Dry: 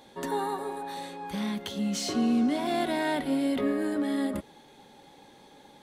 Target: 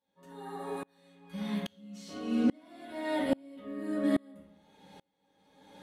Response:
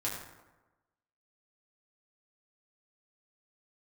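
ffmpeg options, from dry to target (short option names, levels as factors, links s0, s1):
-filter_complex "[1:a]atrim=start_sample=2205,asetrate=79380,aresample=44100[s0];[0:a][s0]afir=irnorm=-1:irlink=0,aeval=exprs='val(0)*pow(10,-34*if(lt(mod(-1.2*n/s,1),2*abs(-1.2)/1000),1-mod(-1.2*n/s,1)/(2*abs(-1.2)/1000),(mod(-1.2*n/s,1)-2*abs(-1.2)/1000)/(1-2*abs(-1.2)/1000))/20)':c=same,volume=1.41"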